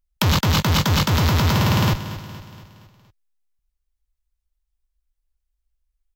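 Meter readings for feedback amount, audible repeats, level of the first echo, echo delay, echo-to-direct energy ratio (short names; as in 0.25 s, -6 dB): 52%, 4, -13.5 dB, 0.234 s, -12.0 dB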